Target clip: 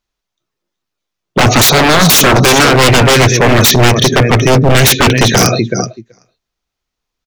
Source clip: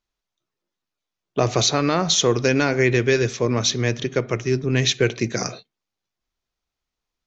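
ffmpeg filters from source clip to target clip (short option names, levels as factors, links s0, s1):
-af "aecho=1:1:379|758:0.211|0.0317,acontrast=59,afftdn=nr=21:nf=-31,adynamicequalizer=threshold=0.0355:dfrequency=380:dqfactor=4.8:tfrequency=380:tqfactor=4.8:attack=5:release=100:ratio=0.375:range=2.5:mode=cutabove:tftype=bell,aeval=exprs='0.168*(abs(mod(val(0)/0.168+3,4)-2)-1)':c=same,acompressor=threshold=0.0708:ratio=6,alimiter=level_in=12.6:limit=0.891:release=50:level=0:latency=1,volume=0.891"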